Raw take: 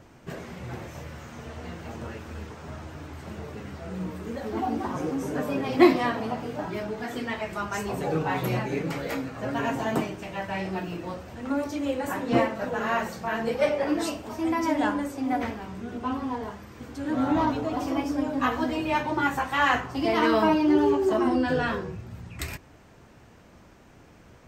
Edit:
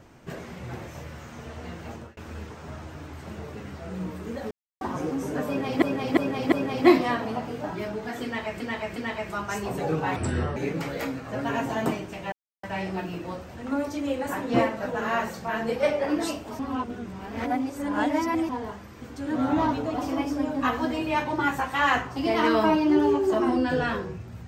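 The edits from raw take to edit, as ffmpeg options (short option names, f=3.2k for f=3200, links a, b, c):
-filter_complex "[0:a]asplit=14[a][b][c][d][e][f][g][h][i][j][k][l][m][n];[a]atrim=end=2.17,asetpts=PTS-STARTPTS,afade=t=out:st=1.92:d=0.25[o];[b]atrim=start=2.17:end=4.51,asetpts=PTS-STARTPTS,afade=t=in:d=0.004:c=hsin,afade=t=out:st=2.336:d=0.004:c=hsin[p];[c]atrim=start=4.51:end=4.81,asetpts=PTS-STARTPTS,volume=0[q];[d]atrim=start=4.81:end=5.822,asetpts=PTS-STARTPTS,afade=t=in:d=0.004:c=hsin[r];[e]atrim=start=5.468:end=5.822[s];[f]atrim=start=5.468:end=5.822[t];[g]atrim=start=5.468:end=7.552[u];[h]atrim=start=7.188:end=7.552[v];[i]atrim=start=7.188:end=8.394[w];[j]atrim=start=8.39:end=8.66,asetpts=PTS-STARTPTS,asetrate=29547,aresample=44100[x];[k]atrim=start=8.656:end=10.42,asetpts=PTS-STARTPTS,afade=t=out:st=1.76:d=0.004:c=hsin,apad=pad_dur=0.31[y];[l]atrim=start=10.42:end=14.382,asetpts=PTS-STARTPTS,afade=t=in:d=0.004:c=hsin[z];[m]atrim=start=14.378:end=16.282,asetpts=PTS-STARTPTS,areverse[aa];[n]atrim=start=16.278[ab];[o][p][q][r]concat=n=4:v=0:a=1[ac];[ac][s]acrossfade=d=0.004:c1=hsin:c2=hsin[ad];[ad][t]acrossfade=d=0.004:c1=hsin:c2=hsin[ae];[ae][u]acrossfade=d=0.004:c1=hsin:c2=hsin[af];[af][v]acrossfade=d=0.004:c1=hsin:c2=hsin[ag];[ag][w]acrossfade=d=0.004:c1=hsin:c2=hsin[ah];[ah][x]acrossfade=d=0.004:c1=hsin:c2=hsin[ai];[y][z]concat=n=2:v=0:a=1[aj];[ai][aj]acrossfade=d=0.004:c1=hsin:c2=hsin[ak];[ak][aa]acrossfade=d=0.004:c1=hsin:c2=hsin[al];[al][ab]acrossfade=d=0.004:c1=hsin:c2=hsin"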